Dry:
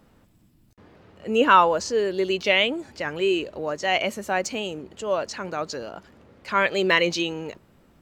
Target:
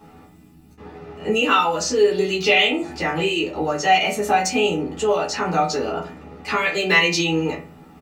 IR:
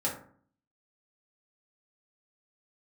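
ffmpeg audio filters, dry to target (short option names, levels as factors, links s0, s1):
-filter_complex "[0:a]acrossover=split=3000[s0][s1];[s0]acompressor=threshold=0.0316:ratio=6[s2];[s2][s1]amix=inputs=2:normalize=0,asplit=2[s3][s4];[s4]adelay=12,volume=0.562[s5];[s3][s5]amix=inputs=2:normalize=0[s6];[1:a]atrim=start_sample=2205,asetrate=66150,aresample=44100[s7];[s6][s7]afir=irnorm=-1:irlink=0,volume=2.24"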